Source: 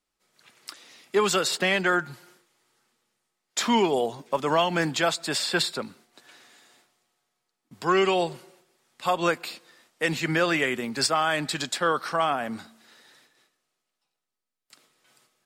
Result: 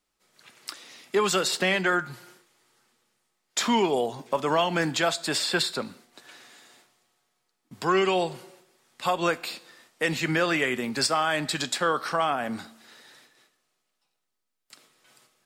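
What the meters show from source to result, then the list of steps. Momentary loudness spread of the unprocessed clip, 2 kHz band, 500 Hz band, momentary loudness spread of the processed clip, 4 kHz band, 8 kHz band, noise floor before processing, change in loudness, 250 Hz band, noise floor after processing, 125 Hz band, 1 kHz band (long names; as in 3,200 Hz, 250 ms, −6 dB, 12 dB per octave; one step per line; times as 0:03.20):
14 LU, −0.5 dB, −1.0 dB, 15 LU, 0.0 dB, 0.0 dB, −83 dBFS, −0.5 dB, −0.5 dB, −79 dBFS, −0.5 dB, −1.0 dB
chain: in parallel at +1 dB: downward compressor, threshold −31 dBFS, peak gain reduction 13 dB
on the sum: tuned comb filter 62 Hz, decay 0.5 s, harmonics all, mix 40%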